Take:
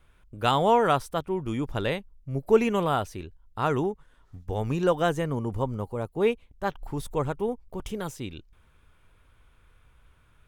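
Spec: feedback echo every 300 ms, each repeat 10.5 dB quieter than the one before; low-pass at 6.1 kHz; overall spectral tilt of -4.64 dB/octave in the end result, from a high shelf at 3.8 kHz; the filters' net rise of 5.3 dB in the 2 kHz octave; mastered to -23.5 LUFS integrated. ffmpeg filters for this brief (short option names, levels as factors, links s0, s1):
-af "lowpass=6100,equalizer=f=2000:t=o:g=8.5,highshelf=f=3800:g=-4,aecho=1:1:300|600|900:0.299|0.0896|0.0269,volume=1.41"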